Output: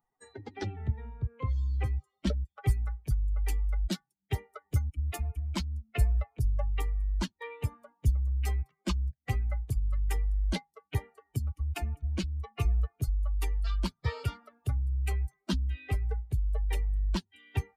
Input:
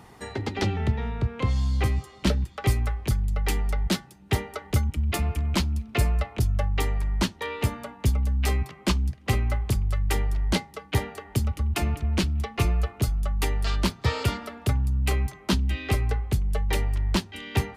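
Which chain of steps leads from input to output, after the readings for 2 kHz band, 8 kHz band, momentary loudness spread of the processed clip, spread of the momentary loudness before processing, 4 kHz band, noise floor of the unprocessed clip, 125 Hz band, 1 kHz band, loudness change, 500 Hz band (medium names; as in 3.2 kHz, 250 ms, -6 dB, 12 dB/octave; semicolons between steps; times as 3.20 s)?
-11.5 dB, -11.0 dB, 7 LU, 4 LU, -11.0 dB, -50 dBFS, -6.0 dB, -11.0 dB, -6.0 dB, -11.0 dB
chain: expander on every frequency bin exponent 2; bass shelf 73 Hz +10.5 dB; trim -5.5 dB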